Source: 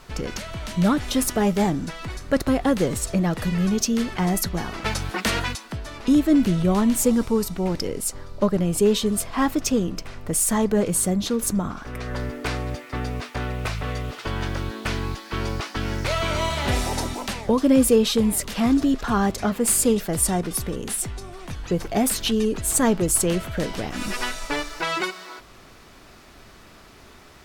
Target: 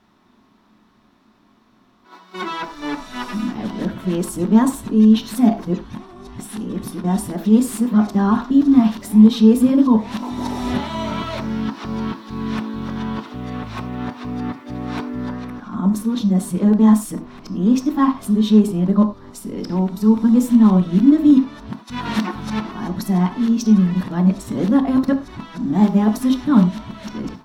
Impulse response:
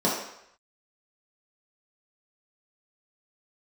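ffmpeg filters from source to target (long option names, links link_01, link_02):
-filter_complex "[0:a]areverse,agate=range=-9dB:threshold=-38dB:ratio=16:detection=peak,equalizer=frequency=125:width_type=o:width=1:gain=8,equalizer=frequency=250:width_type=o:width=1:gain=12,equalizer=frequency=500:width_type=o:width=1:gain=-5,equalizer=frequency=1000:width_type=o:width=1:gain=11,equalizer=frequency=4000:width_type=o:width=1:gain=6,equalizer=frequency=8000:width_type=o:width=1:gain=-5,asplit=2[link_01][link_02];[1:a]atrim=start_sample=2205,afade=type=out:start_time=0.16:duration=0.01,atrim=end_sample=7497[link_03];[link_02][link_03]afir=irnorm=-1:irlink=0,volume=-18dB[link_04];[link_01][link_04]amix=inputs=2:normalize=0,volume=-9.5dB"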